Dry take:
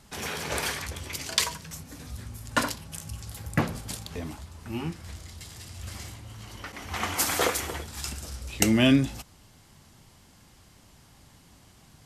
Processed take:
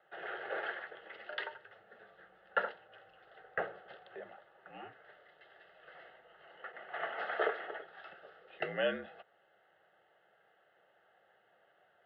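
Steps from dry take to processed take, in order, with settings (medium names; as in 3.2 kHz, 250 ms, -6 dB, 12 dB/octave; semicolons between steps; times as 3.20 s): static phaser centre 1.6 kHz, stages 8; mistuned SSB -53 Hz 360–2600 Hz; trim -3 dB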